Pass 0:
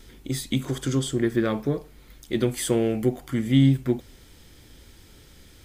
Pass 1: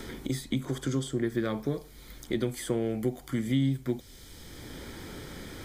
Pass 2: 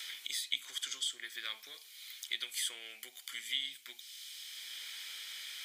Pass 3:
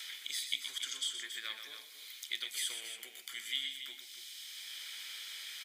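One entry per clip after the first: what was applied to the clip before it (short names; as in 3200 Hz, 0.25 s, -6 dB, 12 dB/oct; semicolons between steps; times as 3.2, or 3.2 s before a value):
notch 2700 Hz, Q 6.3; three-band squash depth 70%; gain -6 dB
resonant high-pass 2800 Hz, resonance Q 2.2; gain +1.5 dB
loudspeakers at several distances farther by 42 m -8 dB, 96 m -10 dB; on a send at -16.5 dB: reverb RT60 2.2 s, pre-delay 3 ms; on the sum: gain -1 dB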